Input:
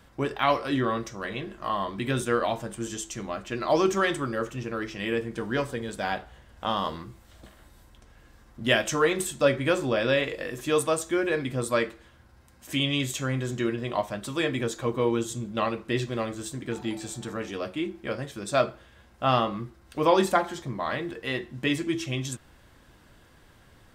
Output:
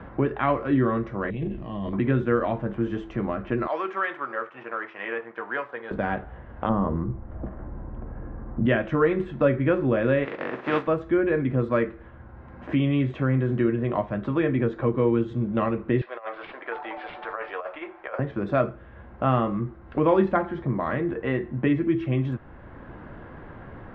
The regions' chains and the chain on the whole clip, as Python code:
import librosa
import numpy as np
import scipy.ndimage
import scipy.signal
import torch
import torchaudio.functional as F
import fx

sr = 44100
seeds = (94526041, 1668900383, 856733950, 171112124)

y = fx.chain(x, sr, fx.curve_eq(hz=(160.0, 1400.0, 2700.0), db=(0, -25, -2)),
    fx.transient(attack_db=-7, sustain_db=9), at=(1.3, 1.93))
y = fx.chain(y, sr, fx.law_mismatch(coded='A'),
    fx.highpass(hz=920.0, slope=12),
    fx.high_shelf(hz=10000.0, db=4.0), at=(3.67, 5.91))
y = fx.chain(y, sr, fx.lowpass(hz=1500.0, slope=12),
    fx.tilt_eq(slope=-2.5),
    fx.hum_notches(base_hz=50, count=3), at=(6.69, 8.66))
y = fx.spec_flatten(y, sr, power=0.39, at=(10.24, 10.86), fade=0.02)
y = fx.highpass(y, sr, hz=240.0, slope=12, at=(10.24, 10.86), fade=0.02)
y = fx.chain(y, sr, fx.highpass(hz=640.0, slope=24),
    fx.over_compress(threshold_db=-39.0, ratio=-0.5),
    fx.resample_bad(factor=4, down='none', up='filtered'), at=(16.01, 18.19))
y = scipy.signal.sosfilt(scipy.signal.bessel(4, 1300.0, 'lowpass', norm='mag', fs=sr, output='sos'), y)
y = fx.dynamic_eq(y, sr, hz=800.0, q=0.94, threshold_db=-40.0, ratio=4.0, max_db=-7)
y = fx.band_squash(y, sr, depth_pct=40)
y = F.gain(torch.from_numpy(y), 7.0).numpy()